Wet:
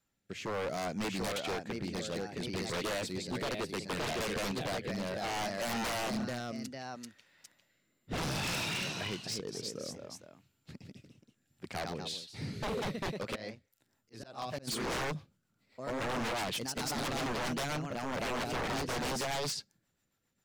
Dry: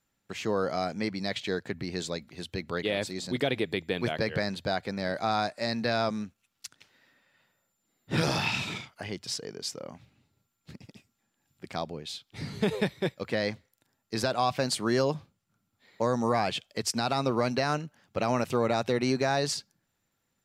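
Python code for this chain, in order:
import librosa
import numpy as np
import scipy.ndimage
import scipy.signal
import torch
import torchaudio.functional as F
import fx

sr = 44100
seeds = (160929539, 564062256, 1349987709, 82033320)

y = fx.echo_pitch(x, sr, ms=762, semitones=1, count=2, db_per_echo=-6.0)
y = fx.rotary_switch(y, sr, hz=0.65, then_hz=7.5, switch_at_s=13.27)
y = fx.auto_swell(y, sr, attack_ms=583.0, at=(13.34, 14.67), fade=0.02)
y = 10.0 ** (-29.5 / 20.0) * (np.abs((y / 10.0 ** (-29.5 / 20.0) + 3.0) % 4.0 - 2.0) - 1.0)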